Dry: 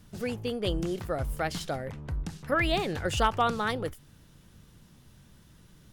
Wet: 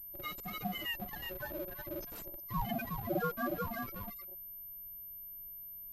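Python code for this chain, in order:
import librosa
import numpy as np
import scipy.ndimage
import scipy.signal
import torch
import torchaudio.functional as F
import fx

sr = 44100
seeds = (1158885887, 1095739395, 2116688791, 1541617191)

p1 = fx.octave_mirror(x, sr, pivot_hz=910.0)
p2 = p1 + fx.echo_single(p1, sr, ms=364, db=-5.0, dry=0)
p3 = fx.spec_topn(p2, sr, count=2)
p4 = np.sign(p3) * np.maximum(np.abs(p3) - 10.0 ** (-53.0 / 20.0), 0.0)
p5 = p4 * np.sin(2.0 * np.pi * 460.0 * np.arange(len(p4)) / sr)
p6 = fx.low_shelf(p5, sr, hz=360.0, db=-11.0, at=(1.05, 1.85))
p7 = fx.dmg_noise_colour(p6, sr, seeds[0], colour='brown', level_db=-66.0)
p8 = fx.bass_treble(p7, sr, bass_db=1, treble_db=9)
p9 = fx.schmitt(p8, sr, flips_db=-44.0)
p10 = p8 + (p9 * 10.0 ** (-6.0 / 20.0))
y = fx.pwm(p10, sr, carrier_hz=13000.0)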